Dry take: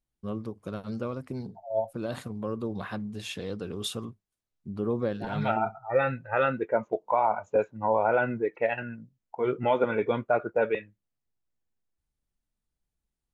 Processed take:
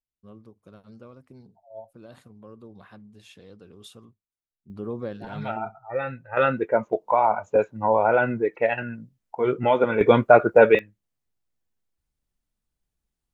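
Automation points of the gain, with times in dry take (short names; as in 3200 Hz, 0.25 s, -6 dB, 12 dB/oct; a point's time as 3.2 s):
-13 dB
from 4.7 s -3.5 dB
from 6.37 s +4.5 dB
from 10.01 s +11.5 dB
from 10.79 s +2.5 dB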